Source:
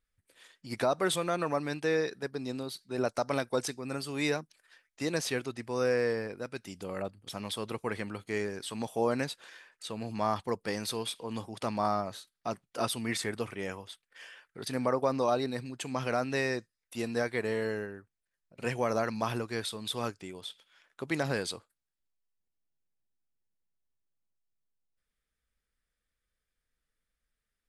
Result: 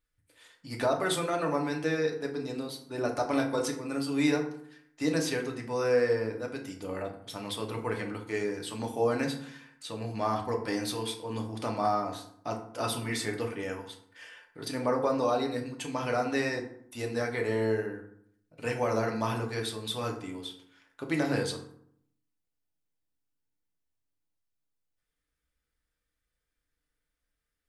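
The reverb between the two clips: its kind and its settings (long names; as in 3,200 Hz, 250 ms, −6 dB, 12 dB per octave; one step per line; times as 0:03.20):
feedback delay network reverb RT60 0.66 s, low-frequency decay 1.3×, high-frequency decay 0.55×, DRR 1 dB
level −1.5 dB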